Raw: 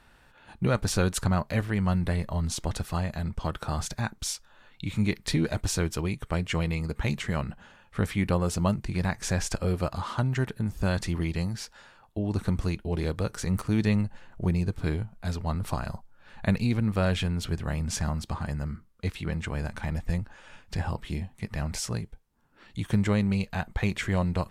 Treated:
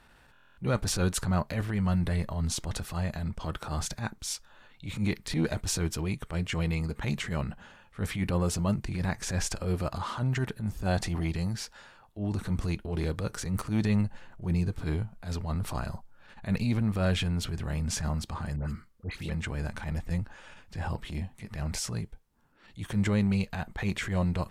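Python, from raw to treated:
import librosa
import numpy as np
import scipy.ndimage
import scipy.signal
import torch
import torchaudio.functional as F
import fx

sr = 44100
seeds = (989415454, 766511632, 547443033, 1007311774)

y = fx.peak_eq(x, sr, hz=730.0, db=11.0, octaves=0.38, at=(10.86, 11.29))
y = fx.dispersion(y, sr, late='highs', ms=89.0, hz=1500.0, at=(18.56, 19.3))
y = fx.transient(y, sr, attack_db=-11, sustain_db=1)
y = fx.buffer_glitch(y, sr, at_s=(0.32,), block=1024, repeats=10)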